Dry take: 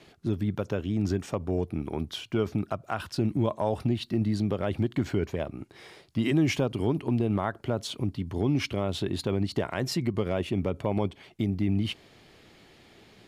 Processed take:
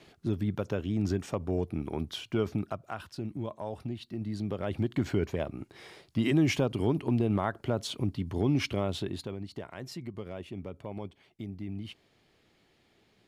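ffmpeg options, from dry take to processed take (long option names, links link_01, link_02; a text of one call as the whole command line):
ffmpeg -i in.wav -af "volume=7dB,afade=type=out:start_time=2.48:duration=0.64:silence=0.398107,afade=type=in:start_time=4.18:duration=0.91:silence=0.354813,afade=type=out:start_time=8.8:duration=0.56:silence=0.281838" out.wav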